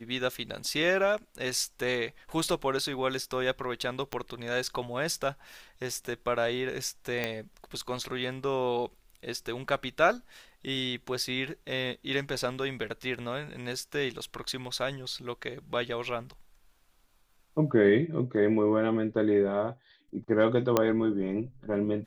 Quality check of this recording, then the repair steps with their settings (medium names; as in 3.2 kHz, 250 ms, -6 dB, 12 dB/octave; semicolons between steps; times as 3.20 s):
4.13 s: pop -16 dBFS
7.24 s: pop -15 dBFS
20.77 s: pop -9 dBFS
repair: de-click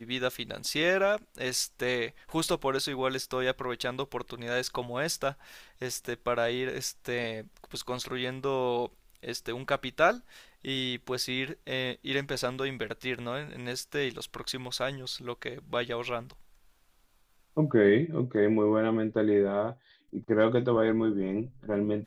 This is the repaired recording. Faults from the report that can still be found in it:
4.13 s: pop